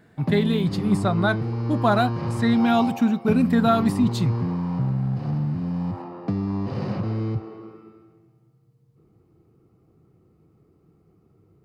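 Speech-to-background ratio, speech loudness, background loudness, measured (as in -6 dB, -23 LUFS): 4.5 dB, -22.5 LUFS, -27.0 LUFS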